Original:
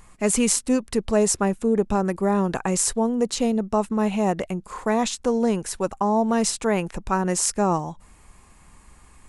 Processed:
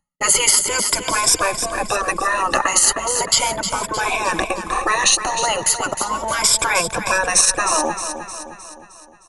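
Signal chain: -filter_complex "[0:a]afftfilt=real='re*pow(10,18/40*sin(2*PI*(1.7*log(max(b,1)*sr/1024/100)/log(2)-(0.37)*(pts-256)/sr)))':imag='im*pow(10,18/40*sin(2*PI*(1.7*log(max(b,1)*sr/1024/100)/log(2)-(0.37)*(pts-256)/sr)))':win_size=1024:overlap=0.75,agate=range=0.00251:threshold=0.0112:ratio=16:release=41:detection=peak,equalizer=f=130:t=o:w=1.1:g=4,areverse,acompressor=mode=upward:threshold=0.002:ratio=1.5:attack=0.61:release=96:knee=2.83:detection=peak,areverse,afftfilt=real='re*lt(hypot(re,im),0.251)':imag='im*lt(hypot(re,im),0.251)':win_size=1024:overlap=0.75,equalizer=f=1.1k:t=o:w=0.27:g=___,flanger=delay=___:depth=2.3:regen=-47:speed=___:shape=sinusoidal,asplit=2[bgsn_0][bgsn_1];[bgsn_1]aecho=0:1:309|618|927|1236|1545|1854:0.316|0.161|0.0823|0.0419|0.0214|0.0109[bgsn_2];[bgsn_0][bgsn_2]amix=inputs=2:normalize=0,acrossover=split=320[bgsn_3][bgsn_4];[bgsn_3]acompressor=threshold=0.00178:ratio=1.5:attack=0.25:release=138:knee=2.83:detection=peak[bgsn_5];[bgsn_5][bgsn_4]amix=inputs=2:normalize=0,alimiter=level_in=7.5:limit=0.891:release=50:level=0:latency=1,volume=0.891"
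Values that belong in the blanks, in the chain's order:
3.5, 1.2, 0.56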